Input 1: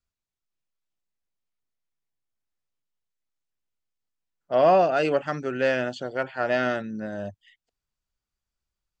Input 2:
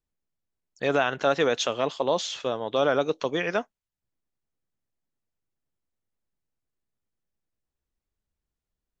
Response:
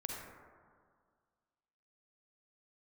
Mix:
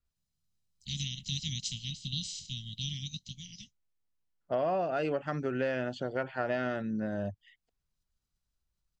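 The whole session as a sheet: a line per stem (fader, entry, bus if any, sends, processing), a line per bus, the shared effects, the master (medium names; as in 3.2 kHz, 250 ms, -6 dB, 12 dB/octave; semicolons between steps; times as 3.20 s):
-2.5 dB, 0.00 s, no send, bass shelf 210 Hz +7 dB
-2.0 dB, 0.05 s, no send, spectral peaks clipped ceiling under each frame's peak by 28 dB; inverse Chebyshev band-stop 460–1500 Hz, stop band 60 dB; comb 1 ms, depth 46%; auto duck -17 dB, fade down 1.80 s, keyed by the first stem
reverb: none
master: low-pass 4 kHz 6 dB/octave; compression 6:1, threshold -28 dBFS, peak gain reduction 11.5 dB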